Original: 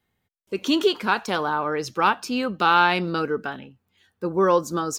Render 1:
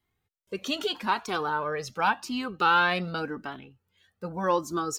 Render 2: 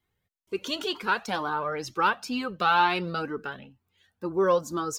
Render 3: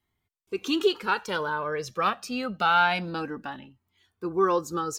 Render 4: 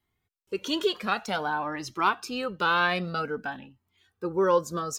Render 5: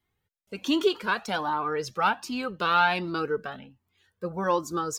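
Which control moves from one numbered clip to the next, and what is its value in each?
Shepard-style flanger, rate: 0.86 Hz, 2.1 Hz, 0.26 Hz, 0.52 Hz, 1.3 Hz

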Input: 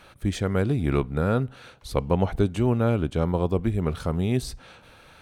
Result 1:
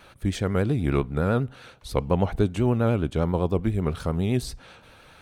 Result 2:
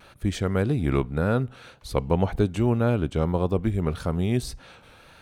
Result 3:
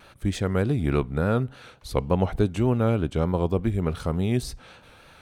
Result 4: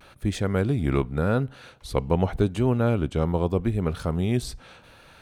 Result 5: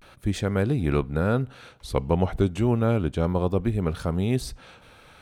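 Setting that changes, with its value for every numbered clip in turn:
vibrato, rate: 10 Hz, 1.8 Hz, 3.4 Hz, 0.85 Hz, 0.33 Hz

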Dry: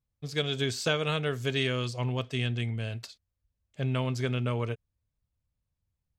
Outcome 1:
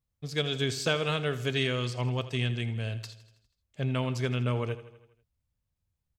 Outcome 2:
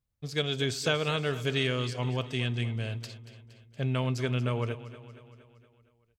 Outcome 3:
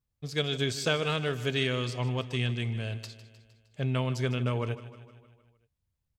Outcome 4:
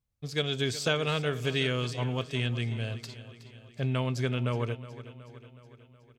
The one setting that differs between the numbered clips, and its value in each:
feedback delay, time: 81 ms, 233 ms, 154 ms, 369 ms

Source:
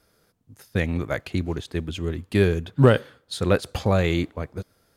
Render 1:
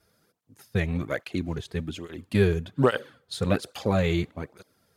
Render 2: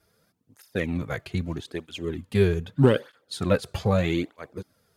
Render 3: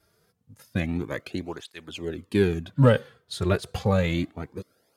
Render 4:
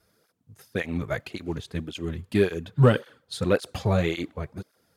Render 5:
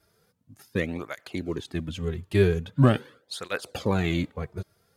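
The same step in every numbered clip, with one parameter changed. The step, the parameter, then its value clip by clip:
cancelling through-zero flanger, nulls at: 1.2 Hz, 0.8 Hz, 0.29 Hz, 1.8 Hz, 0.43 Hz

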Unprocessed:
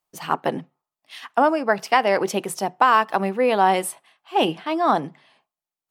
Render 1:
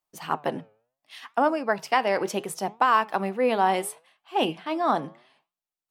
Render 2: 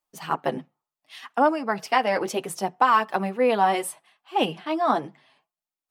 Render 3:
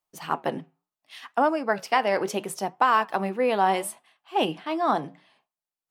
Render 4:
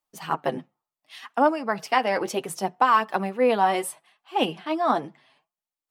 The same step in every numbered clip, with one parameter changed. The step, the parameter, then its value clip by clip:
flange, regen: +90%, -15%, -83%, +29%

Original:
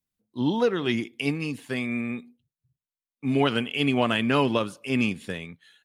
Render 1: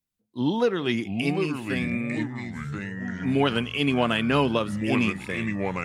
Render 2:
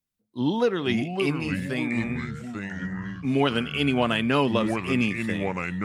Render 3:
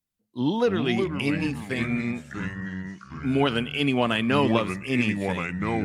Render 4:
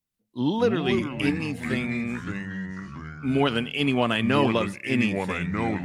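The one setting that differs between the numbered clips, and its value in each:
ever faster or slower copies, time: 590 ms, 399 ms, 205 ms, 125 ms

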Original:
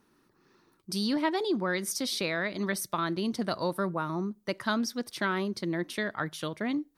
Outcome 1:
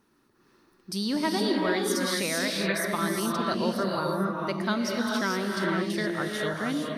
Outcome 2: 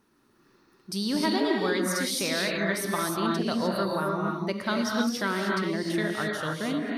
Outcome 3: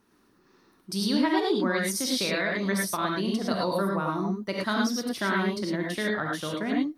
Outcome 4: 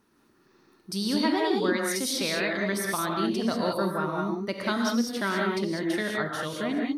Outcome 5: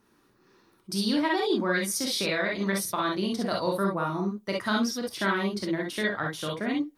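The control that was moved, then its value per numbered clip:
gated-style reverb, gate: 490 ms, 330 ms, 130 ms, 220 ms, 80 ms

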